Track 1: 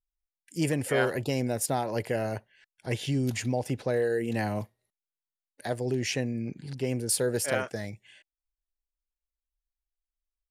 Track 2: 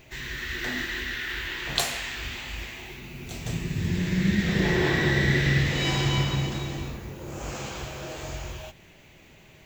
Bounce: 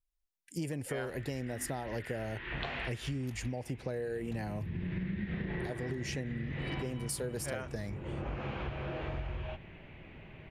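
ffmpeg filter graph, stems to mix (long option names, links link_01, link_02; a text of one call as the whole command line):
ffmpeg -i stem1.wav -i stem2.wav -filter_complex "[0:a]volume=-1.5dB,asplit=2[link_01][link_02];[1:a]lowpass=frequency=2800:width=0.5412,lowpass=frequency=2800:width=1.3066,acompressor=threshold=-24dB:ratio=6,adelay=850,volume=0dB[link_03];[link_02]apad=whole_len=463380[link_04];[link_03][link_04]sidechaincompress=threshold=-32dB:ratio=8:attack=6.5:release=897[link_05];[link_01][link_05]amix=inputs=2:normalize=0,lowshelf=frequency=240:gain=5,acompressor=threshold=-34dB:ratio=6" out.wav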